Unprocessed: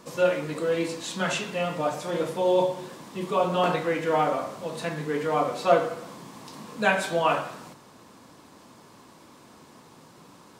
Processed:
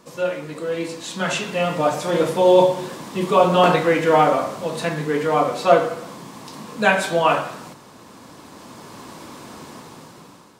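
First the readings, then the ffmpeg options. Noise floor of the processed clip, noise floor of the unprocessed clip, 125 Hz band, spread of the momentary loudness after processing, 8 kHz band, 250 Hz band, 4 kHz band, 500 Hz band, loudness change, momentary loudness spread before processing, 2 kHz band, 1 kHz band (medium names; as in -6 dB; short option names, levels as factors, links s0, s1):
-45 dBFS, -52 dBFS, +7.0 dB, 23 LU, +5.5 dB, +7.0 dB, +6.5 dB, +7.0 dB, +7.0 dB, 15 LU, +6.0 dB, +7.5 dB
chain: -af "dynaudnorm=f=570:g=5:m=6.31,volume=0.891"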